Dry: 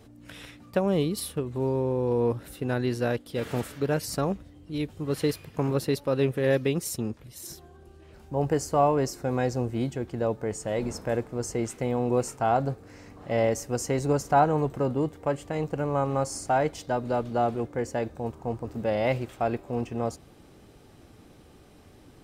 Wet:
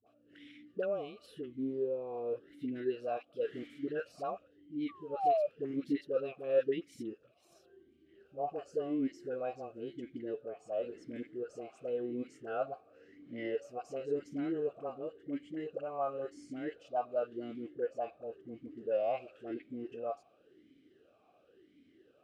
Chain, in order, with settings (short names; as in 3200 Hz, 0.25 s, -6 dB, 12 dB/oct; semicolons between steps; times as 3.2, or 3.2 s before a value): painted sound fall, 4.83–5.43, 570–1200 Hz -25 dBFS; dispersion highs, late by 67 ms, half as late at 560 Hz; vowel sweep a-i 0.94 Hz